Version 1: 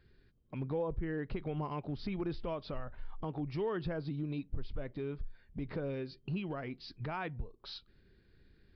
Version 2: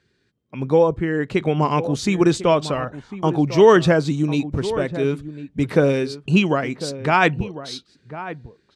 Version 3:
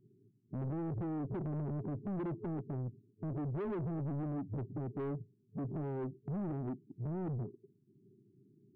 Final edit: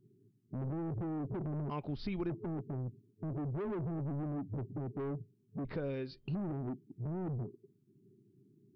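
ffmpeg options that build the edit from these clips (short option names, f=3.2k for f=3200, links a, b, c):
-filter_complex "[0:a]asplit=2[a][b];[2:a]asplit=3[c][d][e];[c]atrim=end=1.702[f];[a]atrim=start=1.698:end=2.302[g];[d]atrim=start=2.298:end=5.652[h];[b]atrim=start=5.648:end=6.352[i];[e]atrim=start=6.348[j];[f][g]acrossfade=d=0.004:c1=hsin:c2=hsin[k];[k][h]acrossfade=d=0.004:c1=hsin:c2=hsin[l];[l][i]acrossfade=d=0.004:c1=hsin:c2=hsin[m];[m][j]acrossfade=d=0.004:c1=hsin:c2=hsin"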